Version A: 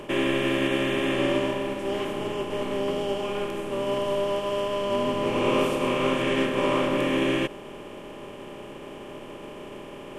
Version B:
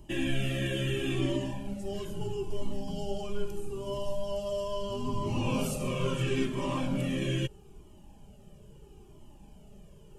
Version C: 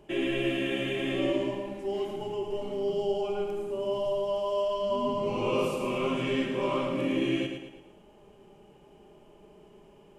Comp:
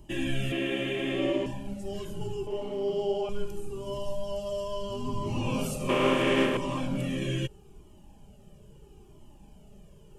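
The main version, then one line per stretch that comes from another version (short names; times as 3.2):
B
0.52–1.46 from C
2.47–3.29 from C
5.89–6.57 from A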